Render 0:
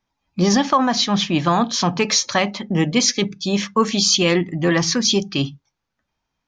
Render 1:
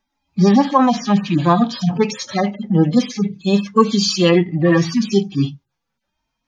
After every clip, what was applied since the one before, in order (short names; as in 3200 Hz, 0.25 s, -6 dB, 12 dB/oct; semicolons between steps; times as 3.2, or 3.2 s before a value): median-filter separation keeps harmonic; gain +5 dB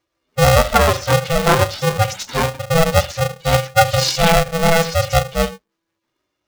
polarity switched at an audio rate 330 Hz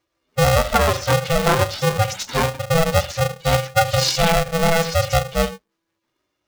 compressor 2.5:1, threshold -14 dBFS, peak gain reduction 5.5 dB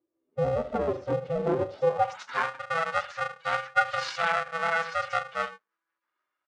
band-pass sweep 340 Hz -> 1400 Hz, 1.64–2.28; downsampling 22050 Hz